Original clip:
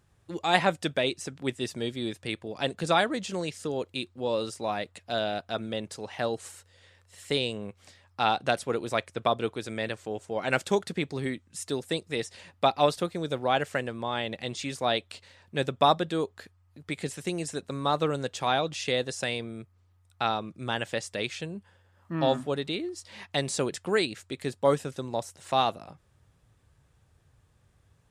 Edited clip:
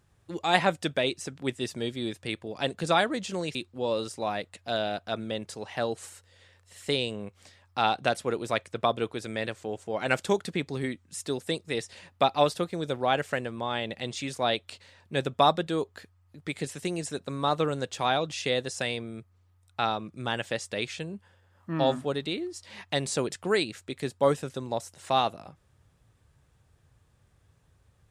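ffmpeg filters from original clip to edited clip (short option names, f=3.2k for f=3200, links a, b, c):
-filter_complex "[0:a]asplit=2[a][b];[a]atrim=end=3.552[c];[b]atrim=start=3.968[d];[c][d]acrossfade=d=0.004:c1=hsin:c2=hsin"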